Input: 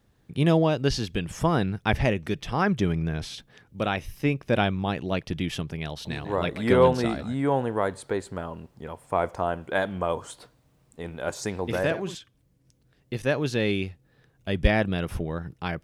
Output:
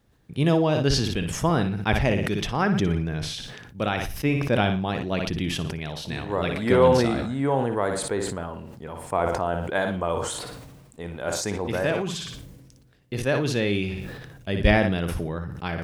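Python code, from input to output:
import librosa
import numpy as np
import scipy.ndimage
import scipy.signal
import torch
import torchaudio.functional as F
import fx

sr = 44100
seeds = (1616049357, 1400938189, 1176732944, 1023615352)

y = fx.room_flutter(x, sr, wall_m=10.0, rt60_s=0.34)
y = fx.sustainer(y, sr, db_per_s=36.0)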